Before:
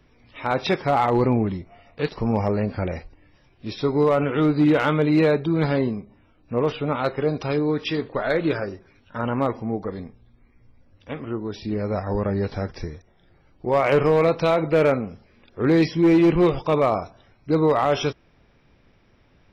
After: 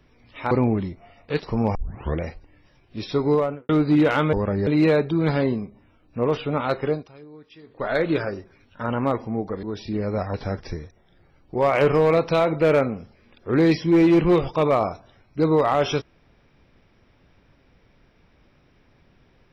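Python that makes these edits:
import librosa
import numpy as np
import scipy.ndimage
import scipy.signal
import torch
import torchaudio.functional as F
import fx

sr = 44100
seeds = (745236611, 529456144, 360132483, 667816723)

y = fx.studio_fade_out(x, sr, start_s=3.97, length_s=0.41)
y = fx.edit(y, sr, fx.cut(start_s=0.51, length_s=0.69),
    fx.tape_start(start_s=2.44, length_s=0.47),
    fx.fade_down_up(start_s=7.25, length_s=0.96, db=-22.0, fade_s=0.23, curve='qua'),
    fx.cut(start_s=9.98, length_s=1.42),
    fx.move(start_s=12.11, length_s=0.34, to_s=5.02), tone=tone)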